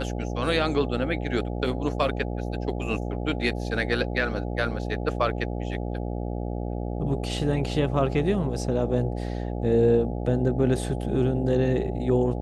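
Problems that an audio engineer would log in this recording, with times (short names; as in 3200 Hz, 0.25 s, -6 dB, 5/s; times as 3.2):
buzz 60 Hz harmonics 14 -30 dBFS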